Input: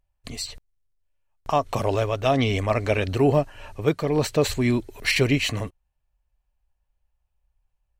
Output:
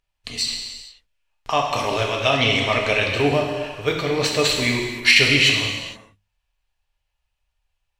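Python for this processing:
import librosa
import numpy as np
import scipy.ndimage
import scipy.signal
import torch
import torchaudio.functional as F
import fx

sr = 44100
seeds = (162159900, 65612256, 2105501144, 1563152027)

y = fx.peak_eq(x, sr, hz=3300.0, db=14.0, octaves=2.8)
y = fx.hum_notches(y, sr, base_hz=50, count=4)
y = fx.rev_gated(y, sr, seeds[0], gate_ms=490, shape='falling', drr_db=-0.5)
y = y * librosa.db_to_amplitude(-5.0)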